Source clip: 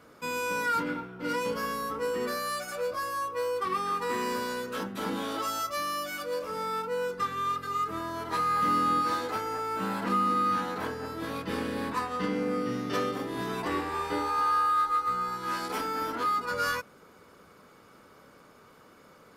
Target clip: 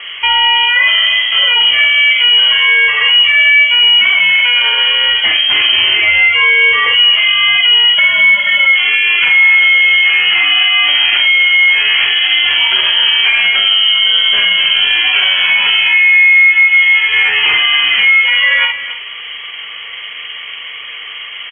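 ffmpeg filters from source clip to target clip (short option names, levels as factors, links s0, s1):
-filter_complex "[0:a]aemphasis=mode=reproduction:type=50kf,bandreject=f=106.1:t=h:w=4,bandreject=f=212.2:t=h:w=4,bandreject=f=318.3:t=h:w=4,bandreject=f=424.4:t=h:w=4,bandreject=f=530.5:t=h:w=4,bandreject=f=636.6:t=h:w=4,bandreject=f=742.7:t=h:w=4,bandreject=f=848.8:t=h:w=4,bandreject=f=954.9:t=h:w=4,bandreject=f=1061:t=h:w=4,bandreject=f=1167.1:t=h:w=4,bandreject=f=1273.2:t=h:w=4,bandreject=f=1379.3:t=h:w=4,acompressor=threshold=0.0178:ratio=5,atempo=0.9,asplit=2[s0][s1];[s1]adelay=47,volume=0.596[s2];[s0][s2]amix=inputs=2:normalize=0,asplit=2[s3][s4];[s4]adelay=270,highpass=300,lowpass=3400,asoftclip=type=hard:threshold=0.02,volume=0.178[s5];[s3][s5]amix=inputs=2:normalize=0,lowpass=f=2900:t=q:w=0.5098,lowpass=f=2900:t=q:w=0.6013,lowpass=f=2900:t=q:w=0.9,lowpass=f=2900:t=q:w=2.563,afreqshift=-3400,alimiter=level_in=29.9:limit=0.891:release=50:level=0:latency=1,volume=0.891"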